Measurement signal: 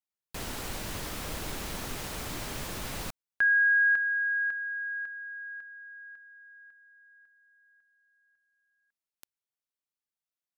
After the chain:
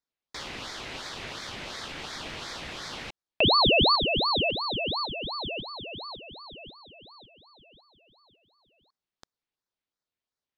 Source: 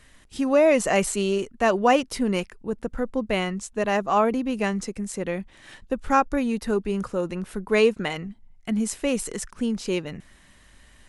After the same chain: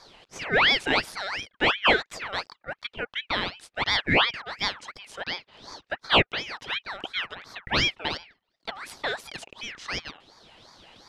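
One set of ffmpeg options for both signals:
-filter_complex "[0:a]asplit=2[a][b];[b]acompressor=threshold=-38dB:ratio=6:attack=15:release=974:detection=peak,volume=2dB[c];[a][c]amix=inputs=2:normalize=0,highpass=730,lowpass=3k,aeval=exprs='val(0)*sin(2*PI*1900*n/s+1900*0.5/2.8*sin(2*PI*2.8*n/s))':c=same,volume=4dB"

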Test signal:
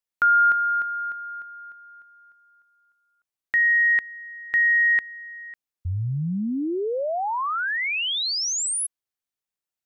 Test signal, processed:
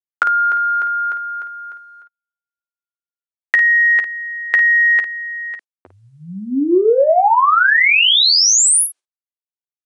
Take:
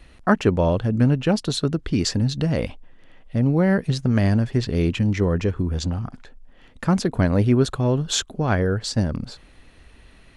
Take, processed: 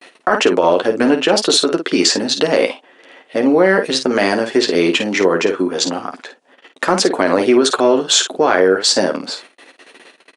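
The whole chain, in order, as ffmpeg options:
-af "agate=range=-45dB:threshold=-46dB:ratio=16:release=113:detection=rms,highpass=f=330:w=0.5412,highpass=f=330:w=1.3066,acompressor=threshold=-29dB:ratio=3:attack=23:release=24:knee=1:detection=peak,aecho=1:1:11|53:0.473|0.355,aeval=exprs='0.447*(cos(1*acos(clip(val(0)/0.447,-1,1)))-cos(1*PI/2))+0.00398*(cos(2*acos(clip(val(0)/0.447,-1,1)))-cos(2*PI/2))':c=same,aresample=22050,aresample=44100,alimiter=level_in=15dB:limit=-1dB:release=50:level=0:latency=1,volume=-1dB"

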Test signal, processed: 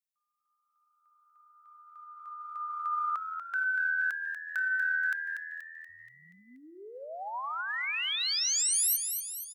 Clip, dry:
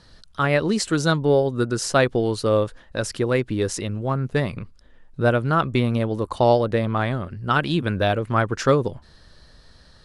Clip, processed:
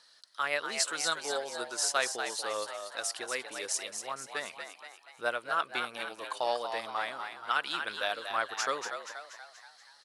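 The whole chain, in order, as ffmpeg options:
-filter_complex "[0:a]highpass=830,highshelf=f=4.3k:g=9,aphaser=in_gain=1:out_gain=1:delay=4.4:decay=0.21:speed=1.9:type=sinusoidal,asplit=2[a][b];[b]asplit=6[c][d][e][f][g][h];[c]adelay=239,afreqshift=81,volume=-7dB[i];[d]adelay=478,afreqshift=162,volume=-12.5dB[j];[e]adelay=717,afreqshift=243,volume=-18dB[k];[f]adelay=956,afreqshift=324,volume=-23.5dB[l];[g]adelay=1195,afreqshift=405,volume=-29.1dB[m];[h]adelay=1434,afreqshift=486,volume=-34.6dB[n];[i][j][k][l][m][n]amix=inputs=6:normalize=0[o];[a][o]amix=inputs=2:normalize=0,volume=-8.5dB"

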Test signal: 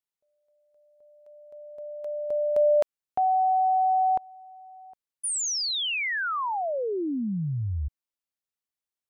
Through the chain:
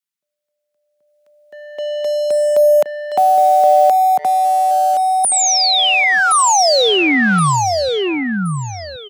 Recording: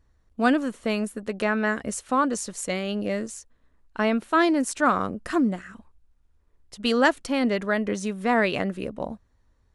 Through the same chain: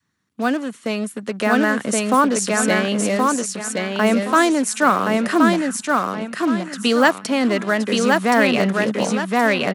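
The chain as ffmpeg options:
-filter_complex "[0:a]asplit=2[a][b];[b]acompressor=threshold=-31dB:ratio=6:attack=3.8:release=90:knee=1:detection=rms,volume=-0.5dB[c];[a][c]amix=inputs=2:normalize=0,adynamicequalizer=threshold=0.0224:dfrequency=350:dqfactor=1.3:tfrequency=350:tqfactor=1.3:attack=5:release=100:ratio=0.375:range=2.5:mode=cutabove:tftype=bell,aecho=1:1:1072|2144|3216|4288:0.708|0.219|0.068|0.0211,acrossover=split=330|1000[d][e][f];[e]acrusher=bits=5:mix=0:aa=0.5[g];[d][g][f]amix=inputs=3:normalize=0,highpass=f=150:w=0.5412,highpass=f=150:w=1.3066,dynaudnorm=f=380:g=7:m=13dB,volume=-1dB"

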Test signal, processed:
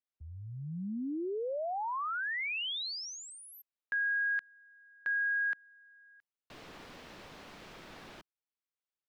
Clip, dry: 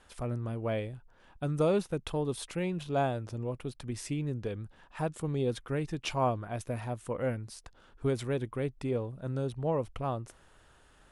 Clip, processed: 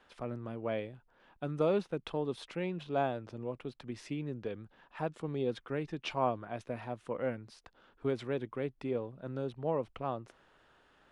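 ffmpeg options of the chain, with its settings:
-filter_complex "[0:a]acrossover=split=160 4900:gain=0.251 1 0.126[a][b][c];[a][b][c]amix=inputs=3:normalize=0,volume=-2dB"

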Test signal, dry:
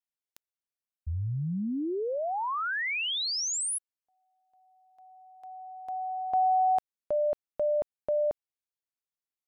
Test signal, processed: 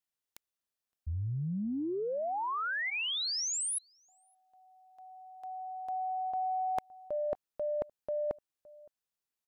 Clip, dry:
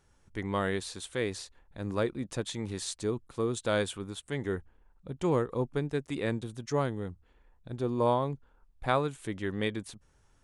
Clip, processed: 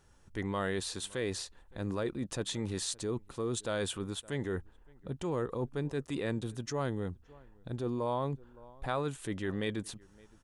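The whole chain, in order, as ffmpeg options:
-filter_complex "[0:a]bandreject=f=2.2k:w=14,asplit=2[a][b];[b]adelay=565.6,volume=-30dB,highshelf=f=4k:g=-12.7[c];[a][c]amix=inputs=2:normalize=0,areverse,acompressor=threshold=-39dB:ratio=6:attack=73:release=26:knee=6:detection=rms,areverse,volume=2.5dB"

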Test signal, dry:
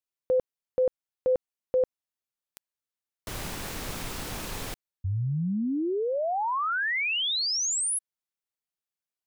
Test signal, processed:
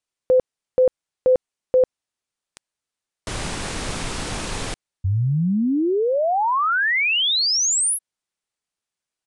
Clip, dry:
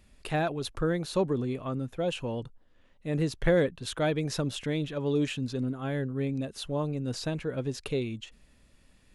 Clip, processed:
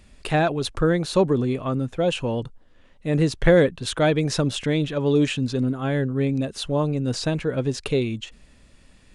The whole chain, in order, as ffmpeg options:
-af "aresample=22050,aresample=44100,volume=8dB"

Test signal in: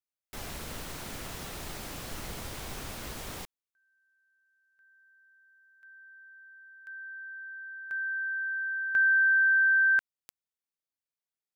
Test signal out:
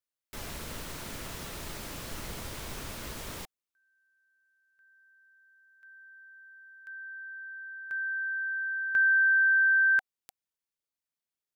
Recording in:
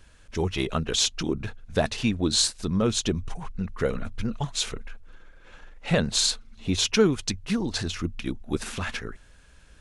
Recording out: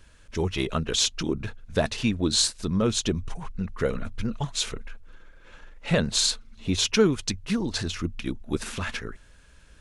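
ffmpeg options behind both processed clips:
-af "bandreject=f=760:w=12"

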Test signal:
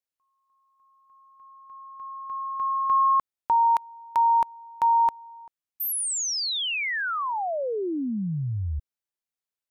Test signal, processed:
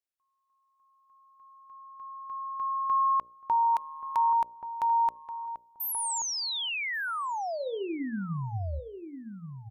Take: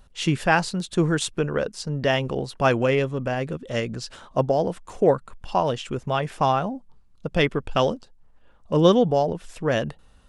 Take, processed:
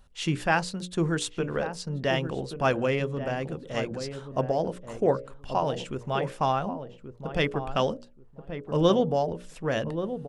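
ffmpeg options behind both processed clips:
-filter_complex "[0:a]bandreject=f=60:t=h:w=6,bandreject=f=120:t=h:w=6,bandreject=f=180:t=h:w=6,bandreject=f=240:t=h:w=6,bandreject=f=300:t=h:w=6,bandreject=f=360:t=h:w=6,bandreject=f=420:t=h:w=6,bandreject=f=480:t=h:w=6,bandreject=f=540:t=h:w=6,bandreject=f=600:t=h:w=6,asplit=2[a][b];[b]adelay=1130,lowpass=f=870:p=1,volume=-8.5dB,asplit=2[c][d];[d]adelay=1130,lowpass=f=870:p=1,volume=0.21,asplit=2[e][f];[f]adelay=1130,lowpass=f=870:p=1,volume=0.21[g];[a][c][e][g]amix=inputs=4:normalize=0,volume=-4.5dB"

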